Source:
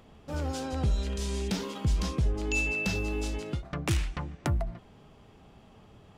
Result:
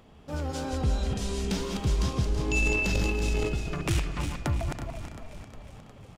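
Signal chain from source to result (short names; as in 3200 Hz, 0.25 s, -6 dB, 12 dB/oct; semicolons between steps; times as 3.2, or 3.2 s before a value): regenerating reverse delay 0.164 s, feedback 54%, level -5 dB; frequency-shifting echo 0.359 s, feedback 64%, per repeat -40 Hz, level -12 dB; 2.57–3.49 transient shaper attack -3 dB, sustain +10 dB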